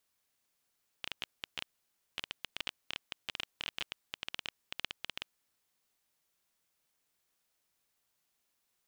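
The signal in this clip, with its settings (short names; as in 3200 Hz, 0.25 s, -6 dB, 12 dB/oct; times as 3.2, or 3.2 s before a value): random clicks 13/s -19 dBFS 4.27 s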